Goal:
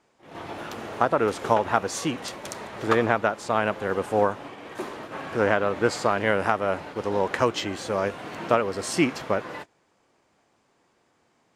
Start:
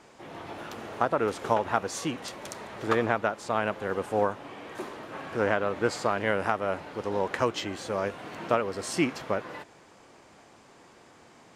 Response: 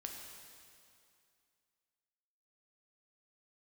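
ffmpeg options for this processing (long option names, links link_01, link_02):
-af "agate=range=-16dB:threshold=-42dB:ratio=16:detection=peak,volume=4dB"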